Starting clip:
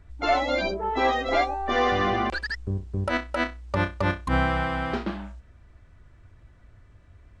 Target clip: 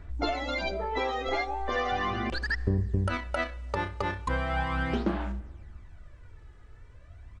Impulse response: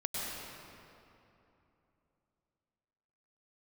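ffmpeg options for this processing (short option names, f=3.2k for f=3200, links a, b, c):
-filter_complex "[0:a]bandreject=f=50:t=h:w=6,bandreject=f=100:t=h:w=6,bandreject=f=150:t=h:w=6,bandreject=f=200:t=h:w=6,acompressor=threshold=-28dB:ratio=6,aphaser=in_gain=1:out_gain=1:delay=2.4:decay=0.54:speed=0.38:type=sinusoidal,asplit=2[a][b];[1:a]atrim=start_sample=2205,asetrate=83790,aresample=44100[c];[b][c]afir=irnorm=-1:irlink=0,volume=-19dB[d];[a][d]amix=inputs=2:normalize=0,aresample=22050,aresample=44100"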